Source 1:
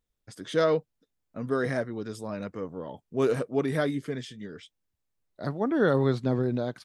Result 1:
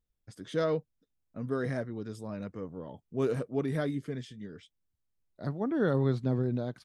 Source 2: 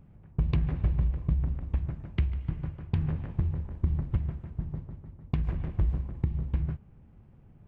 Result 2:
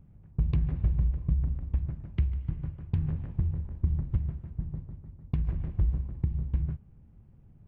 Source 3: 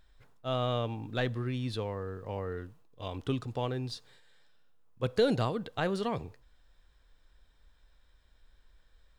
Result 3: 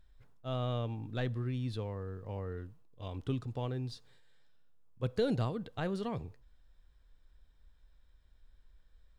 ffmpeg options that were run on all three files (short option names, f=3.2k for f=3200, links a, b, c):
-af "lowshelf=f=260:g=8.5,volume=-7.5dB"